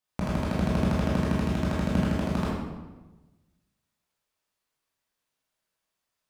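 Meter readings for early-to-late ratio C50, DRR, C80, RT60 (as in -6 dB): -0.5 dB, -7.0 dB, 2.0 dB, 1.2 s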